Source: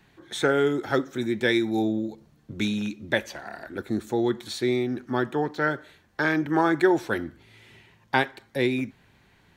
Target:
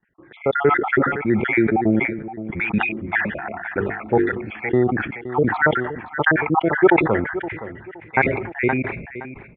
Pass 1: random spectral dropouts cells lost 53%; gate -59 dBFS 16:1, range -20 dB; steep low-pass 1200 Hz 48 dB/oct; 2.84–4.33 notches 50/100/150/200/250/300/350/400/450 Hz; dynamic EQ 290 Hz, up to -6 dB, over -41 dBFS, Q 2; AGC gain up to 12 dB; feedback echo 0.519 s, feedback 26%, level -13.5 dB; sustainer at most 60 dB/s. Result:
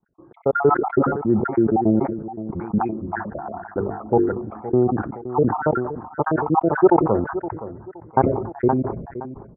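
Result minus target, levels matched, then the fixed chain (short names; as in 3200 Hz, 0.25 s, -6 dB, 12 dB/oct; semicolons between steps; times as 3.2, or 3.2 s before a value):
2000 Hz band -12.5 dB
random spectral dropouts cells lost 53%; gate -59 dBFS 16:1, range -20 dB; steep low-pass 2400 Hz 48 dB/oct; 2.84–4.33 notches 50/100/150/200/250/300/350/400/450 Hz; dynamic EQ 290 Hz, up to -6 dB, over -41 dBFS, Q 2; AGC gain up to 12 dB; feedback echo 0.519 s, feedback 26%, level -13.5 dB; sustainer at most 60 dB/s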